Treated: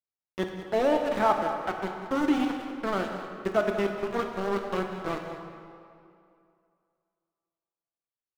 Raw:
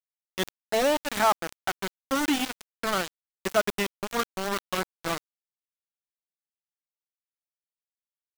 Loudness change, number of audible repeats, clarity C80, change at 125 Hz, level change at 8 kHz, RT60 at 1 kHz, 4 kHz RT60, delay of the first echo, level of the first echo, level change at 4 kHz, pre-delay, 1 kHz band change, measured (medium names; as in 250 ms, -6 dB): -0.5 dB, 1, 5.0 dB, +2.0 dB, -15.5 dB, 2.5 s, 1.7 s, 194 ms, -12.5 dB, -9.5 dB, 7 ms, -0.5 dB